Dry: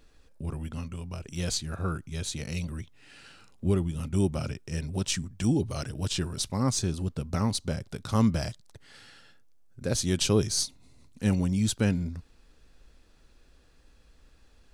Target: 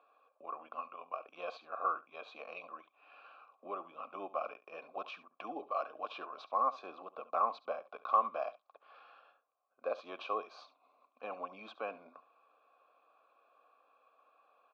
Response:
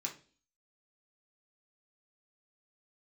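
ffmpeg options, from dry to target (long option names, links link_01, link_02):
-filter_complex "[0:a]alimiter=limit=-18.5dB:level=0:latency=1:release=281,asplit=3[link_01][link_02][link_03];[link_01]bandpass=frequency=730:width_type=q:width=8,volume=0dB[link_04];[link_02]bandpass=frequency=1090:width_type=q:width=8,volume=-6dB[link_05];[link_03]bandpass=frequency=2440:width_type=q:width=8,volume=-9dB[link_06];[link_04][link_05][link_06]amix=inputs=3:normalize=0,asplit=2[link_07][link_08];[link_08]aecho=0:1:70:0.141[link_09];[link_07][link_09]amix=inputs=2:normalize=0,asoftclip=type=hard:threshold=-32.5dB,highpass=frequency=360:width=0.5412,highpass=frequency=360:width=1.3066,equalizer=frequency=380:width_type=q:width=4:gain=-10,equalizer=frequency=730:width_type=q:width=4:gain=-7,equalizer=frequency=1100:width_type=q:width=4:gain=7,equalizer=frequency=2000:width_type=q:width=4:gain=-9,equalizer=frequency=2900:width_type=q:width=4:gain=-10,lowpass=frequency=3100:width=0.5412,lowpass=frequency=3100:width=1.3066,volume=13dB"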